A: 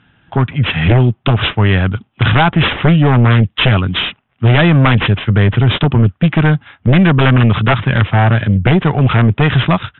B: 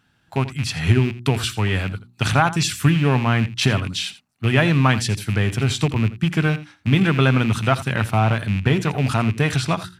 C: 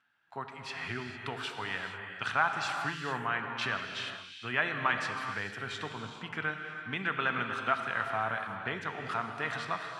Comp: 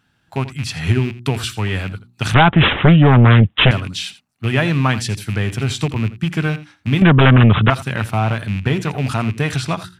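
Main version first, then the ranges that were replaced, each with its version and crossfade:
B
2.34–3.71 from A
7.02–7.7 from A
not used: C

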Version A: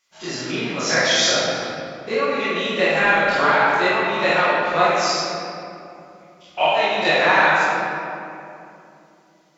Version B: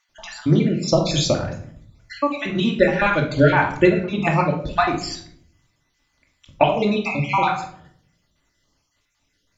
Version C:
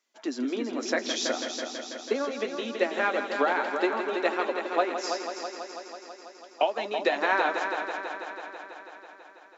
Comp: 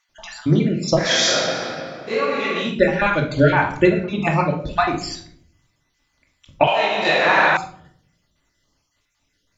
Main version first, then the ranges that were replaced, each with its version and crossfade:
B
1.04–2.68 from A, crossfade 0.16 s
6.67–7.57 from A
not used: C

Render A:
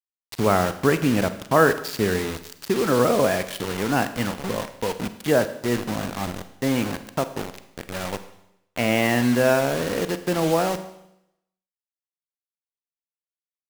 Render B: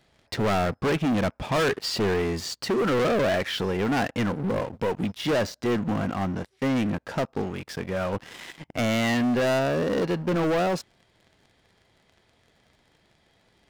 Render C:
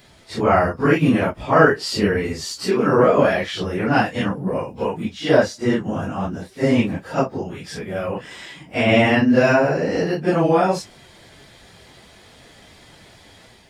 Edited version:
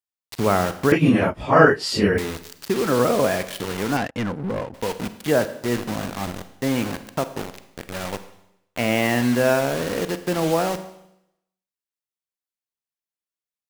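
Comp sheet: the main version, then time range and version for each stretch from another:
A
0.92–2.18 from C
3.97–4.74 from B

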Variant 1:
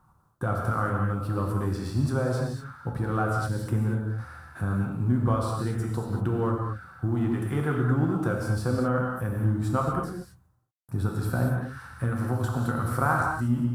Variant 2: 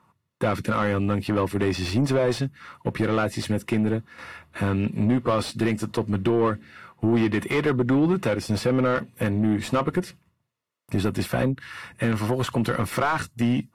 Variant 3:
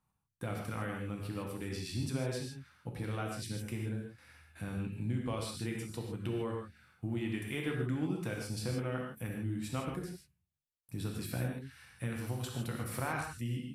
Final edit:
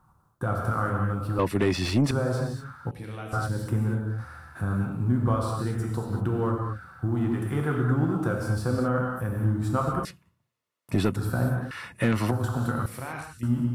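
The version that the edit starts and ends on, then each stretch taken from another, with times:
1
1.39–2.11 from 2
2.91–3.33 from 3
10.05–11.16 from 2
11.71–12.31 from 2
12.86–13.43 from 3

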